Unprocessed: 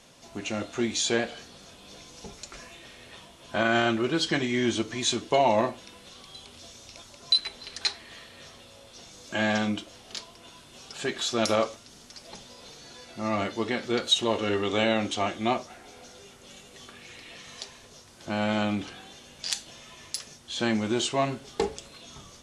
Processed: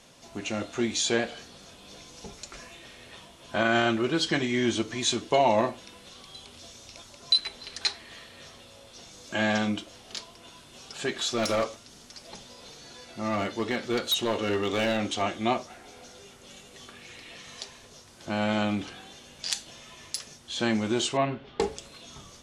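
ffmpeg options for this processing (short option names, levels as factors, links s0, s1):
-filter_complex "[0:a]asplit=3[s0][s1][s2];[s0]afade=t=out:st=11.32:d=0.02[s3];[s1]volume=10.6,asoftclip=hard,volume=0.0944,afade=t=in:st=11.32:d=0.02,afade=t=out:st=15.21:d=0.02[s4];[s2]afade=t=in:st=15.21:d=0.02[s5];[s3][s4][s5]amix=inputs=3:normalize=0,asettb=1/sr,asplit=3[s6][s7][s8];[s6]atrim=end=21.174[s9];[s7]atrim=start=21.17:end=21.6,asetpts=PTS-STARTPTS,afade=t=in:d=0.004:c=qsin,afade=t=out:st=0.426:d=0.004:c=qsin,lowpass=f=3300:w=0.5412,lowpass=f=3300:w=1.3066[s10];[s8]atrim=start=21.596[s11];[s9][s10]acrossfade=d=0.004:c1=hsin:c2=qsin[s12];[s12][s11]acrossfade=d=0.004:c1=qsin:c2=hsin"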